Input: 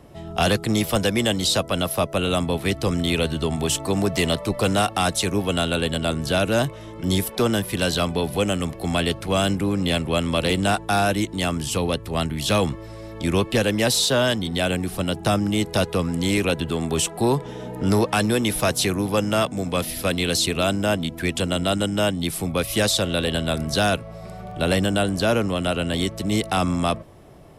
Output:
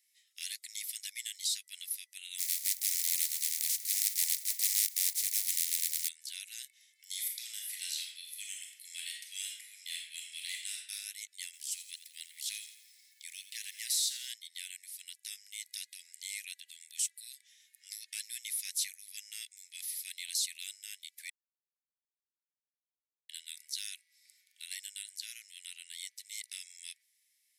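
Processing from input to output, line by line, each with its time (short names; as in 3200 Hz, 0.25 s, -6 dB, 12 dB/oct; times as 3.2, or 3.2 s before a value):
2.38–6.07 spectral contrast lowered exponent 0.15
7.04–10.92 reverb throw, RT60 0.84 s, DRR -0.5 dB
11.45–14.31 lo-fi delay 84 ms, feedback 55%, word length 7-bit, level -11.5 dB
21.3–23.29 mute
whole clip: steep high-pass 2000 Hz 72 dB/oct; bell 2800 Hz -14 dB 0.95 oct; gain -6.5 dB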